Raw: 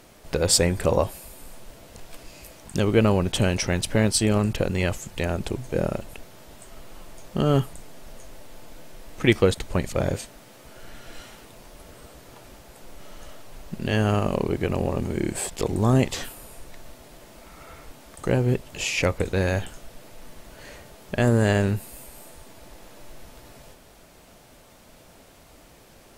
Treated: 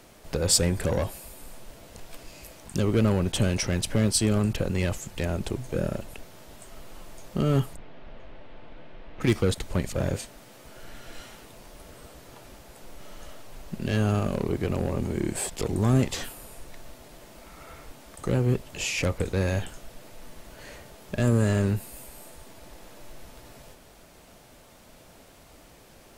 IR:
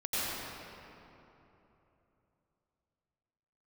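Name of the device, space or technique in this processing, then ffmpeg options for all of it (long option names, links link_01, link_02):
one-band saturation: -filter_complex "[0:a]asplit=3[link_01][link_02][link_03];[link_01]afade=type=out:start_time=7.75:duration=0.02[link_04];[link_02]lowpass=frequency=3300:width=0.5412,lowpass=frequency=3300:width=1.3066,afade=type=in:start_time=7.75:duration=0.02,afade=type=out:start_time=9.2:duration=0.02[link_05];[link_03]afade=type=in:start_time=9.2:duration=0.02[link_06];[link_04][link_05][link_06]amix=inputs=3:normalize=0,acrossover=split=300|4900[link_07][link_08][link_09];[link_08]asoftclip=type=tanh:threshold=-24dB[link_10];[link_07][link_10][link_09]amix=inputs=3:normalize=0,volume=-1dB"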